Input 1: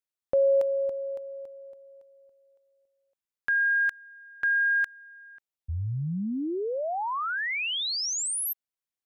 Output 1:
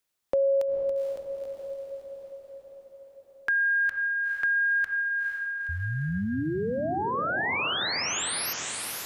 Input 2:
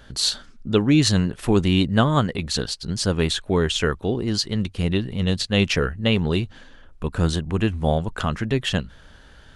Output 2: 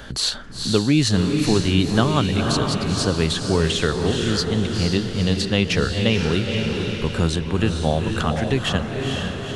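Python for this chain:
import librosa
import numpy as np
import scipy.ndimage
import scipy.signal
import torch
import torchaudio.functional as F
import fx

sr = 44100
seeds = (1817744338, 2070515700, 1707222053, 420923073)

y = fx.echo_diffused(x, sr, ms=474, feedback_pct=50, wet_db=-5.0)
y = fx.band_squash(y, sr, depth_pct=40)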